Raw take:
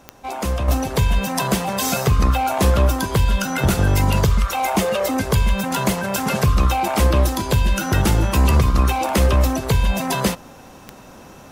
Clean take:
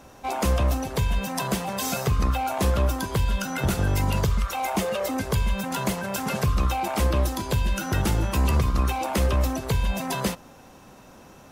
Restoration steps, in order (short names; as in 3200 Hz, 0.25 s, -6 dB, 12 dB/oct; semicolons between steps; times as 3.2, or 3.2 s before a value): de-click; gain 0 dB, from 0.68 s -6.5 dB